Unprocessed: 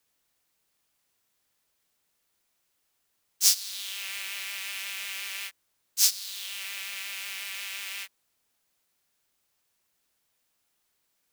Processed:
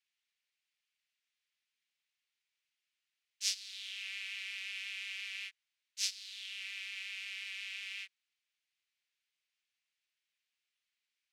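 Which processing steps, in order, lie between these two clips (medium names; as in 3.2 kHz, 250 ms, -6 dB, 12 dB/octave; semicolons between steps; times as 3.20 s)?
ladder band-pass 2.9 kHz, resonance 35%; trim +3.5 dB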